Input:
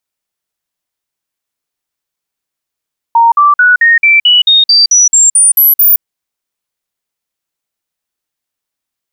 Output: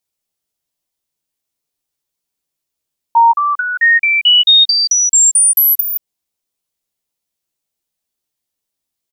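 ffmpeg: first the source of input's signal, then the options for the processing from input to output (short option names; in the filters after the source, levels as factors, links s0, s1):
-f lavfi -i "aevalsrc='0.708*clip(min(mod(t,0.22),0.17-mod(t,0.22))/0.005,0,1)*sin(2*PI*927*pow(2,floor(t/0.22)/3)*mod(t,0.22))':d=2.86:s=44100"
-filter_complex "[0:a]equalizer=f=1500:t=o:w=1.7:g=-7.5,acompressor=threshold=0.355:ratio=6,asplit=2[s0][s1];[s1]adelay=14,volume=0.631[s2];[s0][s2]amix=inputs=2:normalize=0"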